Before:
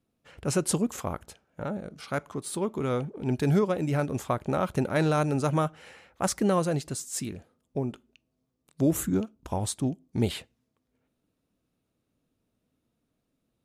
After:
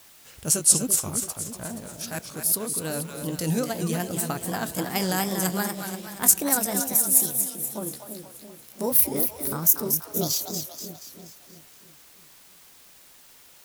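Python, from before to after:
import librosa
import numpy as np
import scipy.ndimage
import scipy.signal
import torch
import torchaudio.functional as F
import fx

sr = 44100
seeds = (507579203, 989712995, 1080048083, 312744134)

p1 = fx.pitch_glide(x, sr, semitones=11.0, runs='starting unshifted')
p2 = fx.high_shelf(p1, sr, hz=4100.0, db=11.5)
p3 = p2 + fx.echo_split(p2, sr, split_hz=570.0, low_ms=332, high_ms=239, feedback_pct=52, wet_db=-6.5, dry=0)
p4 = fx.vibrato(p3, sr, rate_hz=2.5, depth_cents=83.0)
p5 = fx.bass_treble(p4, sr, bass_db=4, treble_db=11)
p6 = fx.quant_dither(p5, sr, seeds[0], bits=6, dither='triangular')
p7 = p5 + (p6 * librosa.db_to_amplitude(-9.5))
y = p7 * librosa.db_to_amplitude(-6.5)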